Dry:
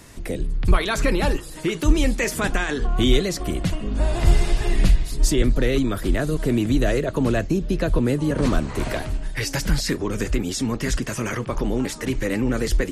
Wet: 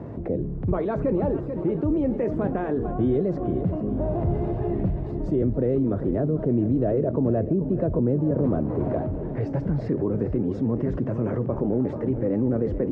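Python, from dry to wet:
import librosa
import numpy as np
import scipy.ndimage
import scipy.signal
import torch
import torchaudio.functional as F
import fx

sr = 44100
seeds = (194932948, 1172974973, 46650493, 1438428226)

p1 = scipy.signal.sosfilt(scipy.signal.cheby1(2, 1.0, [100.0, 600.0], 'bandpass', fs=sr, output='sos'), x)
p2 = p1 + fx.echo_feedback(p1, sr, ms=439, feedback_pct=42, wet_db=-14.5, dry=0)
p3 = fx.env_flatten(p2, sr, amount_pct=50)
y = p3 * librosa.db_to_amplitude(-2.0)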